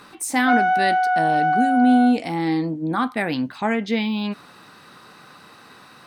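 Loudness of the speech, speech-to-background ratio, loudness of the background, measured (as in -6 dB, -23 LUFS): -22.0 LUFS, -1.5 dB, -20.5 LUFS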